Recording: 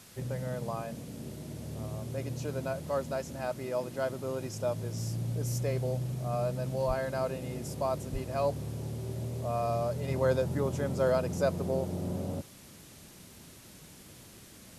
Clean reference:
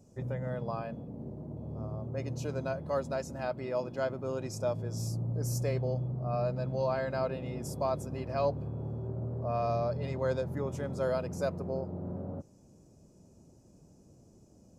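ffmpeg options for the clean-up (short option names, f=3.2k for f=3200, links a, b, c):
-filter_complex "[0:a]asplit=3[a][b][c];[a]afade=t=out:st=6.87:d=0.02[d];[b]highpass=f=140:w=0.5412,highpass=f=140:w=1.3066,afade=t=in:st=6.87:d=0.02,afade=t=out:st=6.99:d=0.02[e];[c]afade=t=in:st=6.99:d=0.02[f];[d][e][f]amix=inputs=3:normalize=0,asplit=3[g][h][i];[g]afade=t=out:st=8.12:d=0.02[j];[h]highpass=f=140:w=0.5412,highpass=f=140:w=1.3066,afade=t=in:st=8.12:d=0.02,afade=t=out:st=8.24:d=0.02[k];[i]afade=t=in:st=8.24:d=0.02[l];[j][k][l]amix=inputs=3:normalize=0,afwtdn=0.0022,asetnsamples=n=441:p=0,asendcmd='10.08 volume volume -4dB',volume=0dB"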